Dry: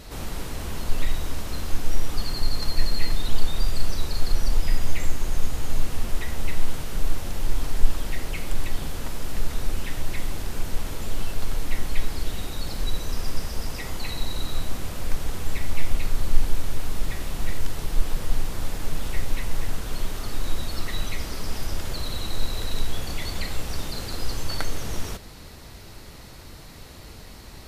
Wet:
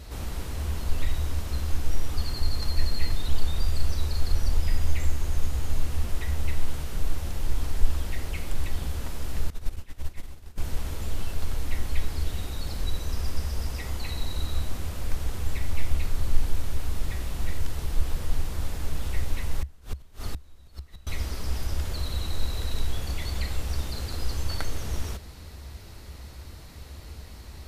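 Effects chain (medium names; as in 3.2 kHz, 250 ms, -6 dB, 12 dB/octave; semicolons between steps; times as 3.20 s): 19.60–21.07 s: inverted gate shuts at -16 dBFS, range -24 dB; peaking EQ 69 Hz +14 dB 0.57 oct; 9.50–10.58 s: upward expansion 2.5:1, over -27 dBFS; trim -4 dB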